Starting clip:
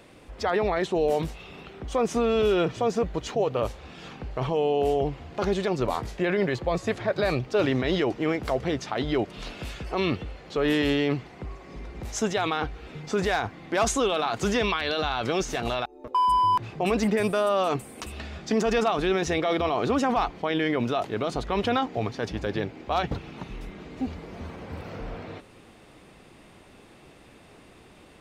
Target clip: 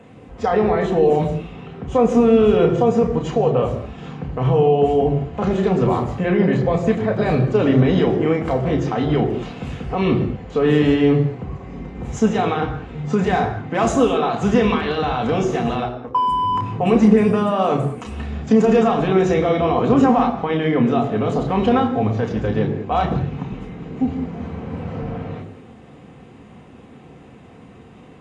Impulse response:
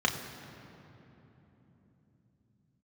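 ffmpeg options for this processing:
-filter_complex "[0:a]equalizer=f=4k:w=0.32:g=-11.5[a];[1:a]atrim=start_sample=2205,afade=t=out:st=0.27:d=0.01,atrim=end_sample=12348[b];[a][b]afir=irnorm=-1:irlink=0" -ar 24000 -c:a aac -b:a 48k

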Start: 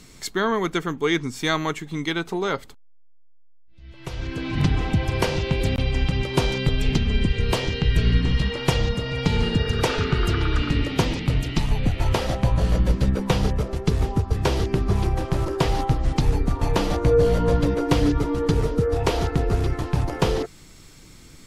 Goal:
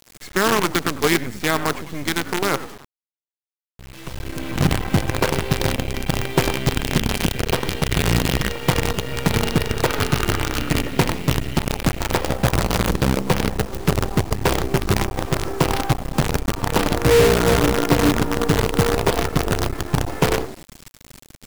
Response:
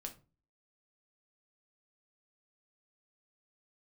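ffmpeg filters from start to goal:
-filter_complex "[0:a]acrossover=split=100|2800[a][b][c];[a]asoftclip=type=tanh:threshold=-25.5dB[d];[b]asplit=5[e][f][g][h][i];[f]adelay=98,afreqshift=-62,volume=-9dB[j];[g]adelay=196,afreqshift=-124,volume=-19.2dB[k];[h]adelay=294,afreqshift=-186,volume=-29.3dB[l];[i]adelay=392,afreqshift=-248,volume=-39.5dB[m];[e][j][k][l][m]amix=inputs=5:normalize=0[n];[c]acompressor=threshold=-44dB:ratio=6[o];[d][n][o]amix=inputs=3:normalize=0,acrusher=bits=4:dc=4:mix=0:aa=0.000001,volume=3dB"

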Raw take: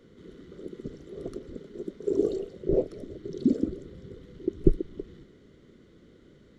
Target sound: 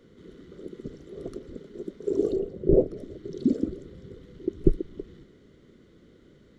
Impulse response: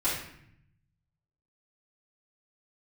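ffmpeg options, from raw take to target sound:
-filter_complex "[0:a]asettb=1/sr,asplit=3[a][b][c];[a]atrim=end=2.324[d];[b]atrim=start=2.32:end=2.97,asetpts=PTS-STARTPTS,afade=t=in:d=0.004:c=qsin,afade=t=out:st=0.646:d=0.004:c=qsin,tiltshelf=f=930:g=7.5[e];[c]atrim=start=2.966[f];[d][e]acrossfade=d=0.004:c1=hsin:c2=qsin[g];[g][f]acrossfade=d=0.004:c1=qsin:c2=hsin"

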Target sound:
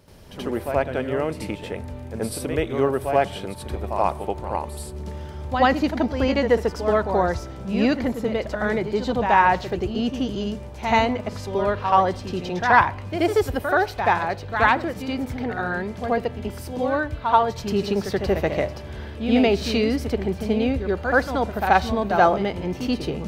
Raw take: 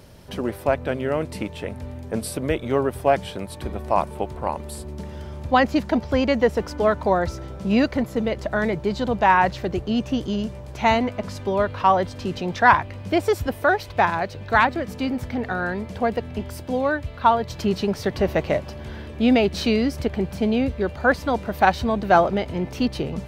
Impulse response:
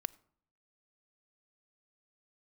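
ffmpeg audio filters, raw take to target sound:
-filter_complex "[0:a]asplit=2[a][b];[1:a]atrim=start_sample=2205,adelay=80[c];[b][c]afir=irnorm=-1:irlink=0,volume=9dB[d];[a][d]amix=inputs=2:normalize=0,volume=-8.5dB"

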